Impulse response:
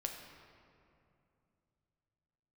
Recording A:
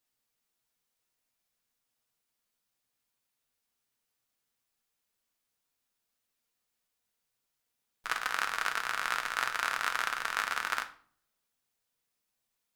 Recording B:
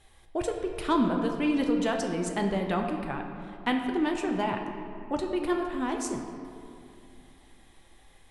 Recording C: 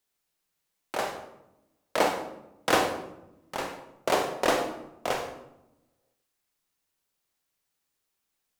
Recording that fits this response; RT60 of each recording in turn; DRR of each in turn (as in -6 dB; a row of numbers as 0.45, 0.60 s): B; 0.50, 2.7, 0.90 s; 5.0, 2.0, 4.0 dB